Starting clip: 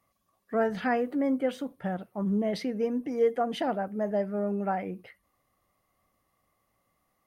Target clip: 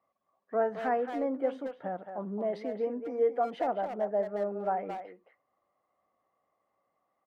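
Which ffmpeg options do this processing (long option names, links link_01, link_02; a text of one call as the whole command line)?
ffmpeg -i in.wav -filter_complex "[0:a]bandpass=frequency=700:width_type=q:width=1:csg=0,asplit=2[link_01][link_02];[link_02]adelay=220,highpass=300,lowpass=3400,asoftclip=type=hard:threshold=-27dB,volume=-7dB[link_03];[link_01][link_03]amix=inputs=2:normalize=0" out.wav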